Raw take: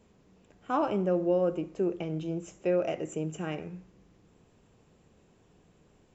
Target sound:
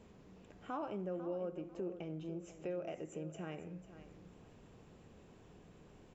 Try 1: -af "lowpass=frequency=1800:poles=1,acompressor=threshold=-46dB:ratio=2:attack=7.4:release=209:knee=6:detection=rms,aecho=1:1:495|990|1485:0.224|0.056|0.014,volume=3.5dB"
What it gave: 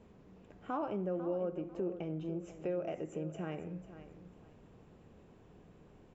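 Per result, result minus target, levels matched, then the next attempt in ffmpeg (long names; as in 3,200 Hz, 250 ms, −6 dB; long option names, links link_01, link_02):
downward compressor: peak gain reduction −5 dB; 4,000 Hz band −4.5 dB
-af "lowpass=frequency=1800:poles=1,acompressor=threshold=-55.5dB:ratio=2:attack=7.4:release=209:knee=6:detection=rms,aecho=1:1:495|990|1485:0.224|0.056|0.014,volume=3.5dB"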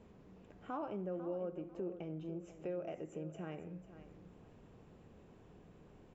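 4,000 Hz band −4.5 dB
-af "lowpass=frequency=5000:poles=1,acompressor=threshold=-55.5dB:ratio=2:attack=7.4:release=209:knee=6:detection=rms,aecho=1:1:495|990|1485:0.224|0.056|0.014,volume=3.5dB"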